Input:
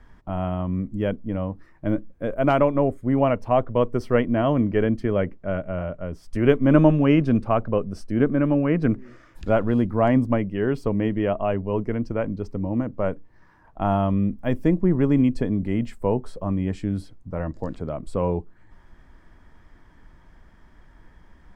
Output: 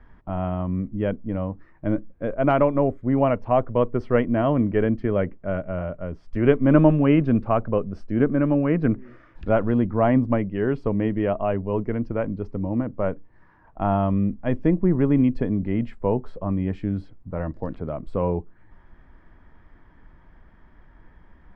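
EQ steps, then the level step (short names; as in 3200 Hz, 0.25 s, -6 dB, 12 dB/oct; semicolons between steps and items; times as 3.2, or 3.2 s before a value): LPF 2600 Hz 12 dB/oct; 0.0 dB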